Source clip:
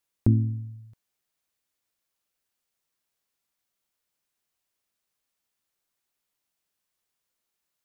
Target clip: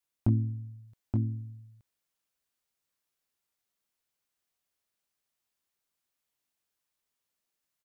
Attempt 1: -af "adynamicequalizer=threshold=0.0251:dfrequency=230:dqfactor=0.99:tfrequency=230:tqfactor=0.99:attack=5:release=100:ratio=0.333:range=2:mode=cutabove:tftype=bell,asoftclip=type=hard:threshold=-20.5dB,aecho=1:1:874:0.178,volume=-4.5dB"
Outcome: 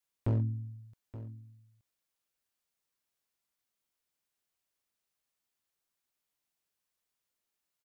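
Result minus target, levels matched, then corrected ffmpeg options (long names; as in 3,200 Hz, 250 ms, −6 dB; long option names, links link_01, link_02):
hard clipping: distortion +15 dB; echo-to-direct −11.5 dB
-af "adynamicequalizer=threshold=0.0251:dfrequency=230:dqfactor=0.99:tfrequency=230:tqfactor=0.99:attack=5:release=100:ratio=0.333:range=2:mode=cutabove:tftype=bell,asoftclip=type=hard:threshold=-12dB,aecho=1:1:874:0.668,volume=-4.5dB"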